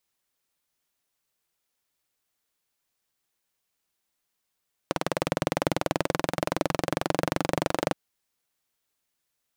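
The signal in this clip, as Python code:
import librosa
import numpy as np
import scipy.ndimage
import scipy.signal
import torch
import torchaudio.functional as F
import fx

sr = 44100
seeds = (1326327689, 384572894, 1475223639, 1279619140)

y = fx.engine_single_rev(sr, seeds[0], length_s=3.02, rpm=2300, resonances_hz=(170.0, 310.0, 530.0), end_rpm=2900)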